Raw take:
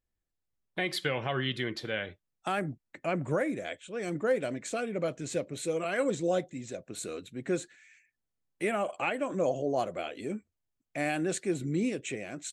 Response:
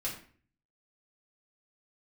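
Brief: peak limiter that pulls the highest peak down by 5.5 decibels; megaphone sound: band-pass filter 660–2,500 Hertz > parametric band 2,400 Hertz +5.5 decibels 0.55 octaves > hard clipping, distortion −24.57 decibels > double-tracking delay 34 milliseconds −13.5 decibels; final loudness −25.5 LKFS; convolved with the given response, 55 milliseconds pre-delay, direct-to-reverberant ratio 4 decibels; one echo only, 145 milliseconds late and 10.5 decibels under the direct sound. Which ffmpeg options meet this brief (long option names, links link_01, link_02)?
-filter_complex "[0:a]alimiter=limit=-24dB:level=0:latency=1,aecho=1:1:145:0.299,asplit=2[link_01][link_02];[1:a]atrim=start_sample=2205,adelay=55[link_03];[link_02][link_03]afir=irnorm=-1:irlink=0,volume=-6.5dB[link_04];[link_01][link_04]amix=inputs=2:normalize=0,highpass=660,lowpass=2500,equalizer=frequency=2400:width_type=o:width=0.55:gain=5.5,asoftclip=type=hard:threshold=-28dB,asplit=2[link_05][link_06];[link_06]adelay=34,volume=-13.5dB[link_07];[link_05][link_07]amix=inputs=2:normalize=0,volume=12.5dB"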